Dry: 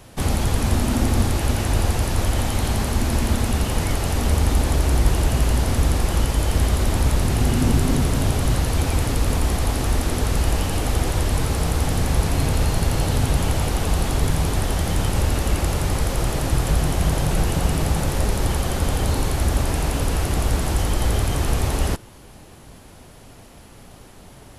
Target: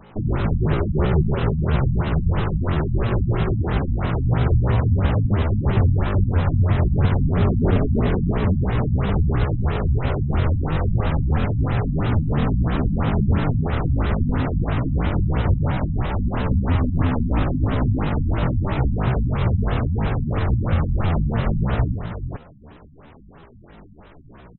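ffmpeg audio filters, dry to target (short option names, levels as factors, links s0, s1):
-af "aecho=1:1:59|438:0.168|0.398,asetrate=72056,aresample=44100,atempo=0.612027,afftfilt=real='re*lt(b*sr/1024,250*pow(4100/250,0.5+0.5*sin(2*PI*3*pts/sr)))':imag='im*lt(b*sr/1024,250*pow(4100/250,0.5+0.5*sin(2*PI*3*pts/sr)))':win_size=1024:overlap=0.75"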